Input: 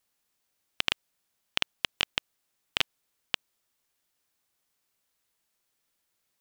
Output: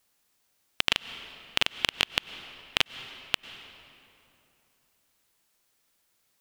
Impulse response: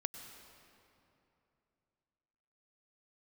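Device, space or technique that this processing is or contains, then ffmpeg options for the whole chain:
ducked reverb: -filter_complex "[0:a]asettb=1/sr,asplit=3[link_01][link_02][link_03];[link_01]atrim=end=0.884[link_04];[link_02]atrim=start=0.88:end=1.9,asetpts=PTS-STARTPTS,afade=type=in:duration=0.004:curve=qsin,afade=type=out:start_time=1.016:duration=0.004:curve=qsin,asplit=2[link_05][link_06];[link_06]adelay=41,volume=-3.5dB[link_07];[link_05][link_07]amix=inputs=2:normalize=0,atrim=end_sample=44982[link_08];[link_03]atrim=start=1.896[link_09];[link_04][link_08]acrossfade=duration=0.004:curve1=hsin:curve2=qsin[link_10];[link_10][link_09]acrossfade=duration=0.004:curve1=qsin:curve2=hsin,asplit=3[link_11][link_12][link_13];[1:a]atrim=start_sample=2205[link_14];[link_12][link_14]afir=irnorm=-1:irlink=0[link_15];[link_13]apad=whole_len=282488[link_16];[link_15][link_16]sidechaincompress=threshold=-37dB:ratio=6:attack=16:release=130,volume=-2dB[link_17];[link_11][link_17]amix=inputs=2:normalize=0,volume=1.5dB"

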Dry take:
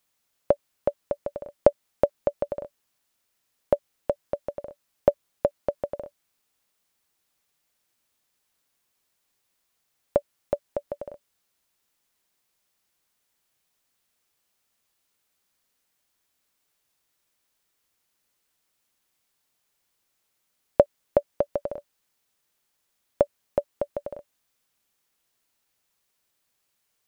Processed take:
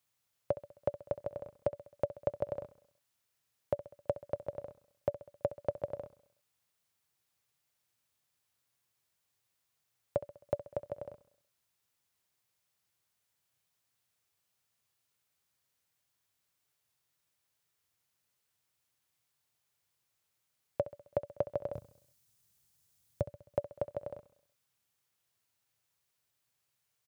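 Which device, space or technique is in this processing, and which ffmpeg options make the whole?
car stereo with a boomy subwoofer: -filter_complex "[0:a]highpass=130,asettb=1/sr,asplit=3[link_01][link_02][link_03];[link_01]atrim=end=21.734[link_04];[link_02]atrim=start=21.73:end=23.22,asetpts=PTS-STARTPTS,afade=type=in:duration=0.004:curve=qsin,afade=type=out:start_time=1.486:duration=0.004:curve=qsin,bass=frequency=250:gain=13,treble=frequency=4000:gain=9[link_05];[link_03]atrim=start=23.216[link_06];[link_04][link_05]acrossfade=duration=0.004:curve1=hsin:curve2=qsin[link_07];[link_07][link_06]acrossfade=duration=0.004:curve1=qsin:curve2=hsin,lowshelf=frequency=160:width_type=q:width=1.5:gain=11,alimiter=limit=-12dB:level=0:latency=1:release=120,aecho=1:1:66|132|198|264|330:0.168|0.0907|0.049|0.0264|0.0143,volume=-6dB"

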